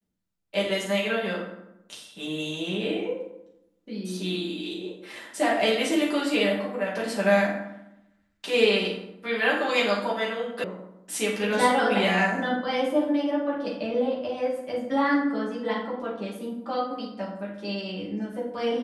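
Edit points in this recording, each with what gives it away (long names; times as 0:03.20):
0:10.64: cut off before it has died away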